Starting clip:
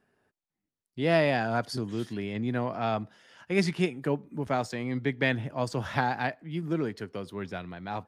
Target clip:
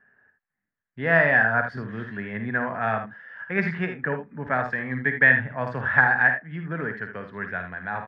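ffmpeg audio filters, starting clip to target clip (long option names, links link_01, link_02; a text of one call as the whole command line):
ffmpeg -i in.wav -af "lowpass=frequency=1700:width_type=q:width=8.6,equalizer=frequency=330:width_type=o:width=0.3:gain=-11,aecho=1:1:54|78:0.355|0.316" out.wav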